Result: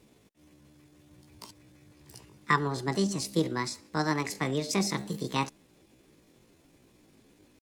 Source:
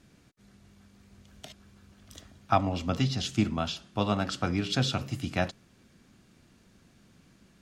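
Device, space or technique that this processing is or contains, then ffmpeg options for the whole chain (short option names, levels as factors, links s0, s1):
chipmunk voice: -af "asetrate=66075,aresample=44100,atempo=0.66742,volume=0.891"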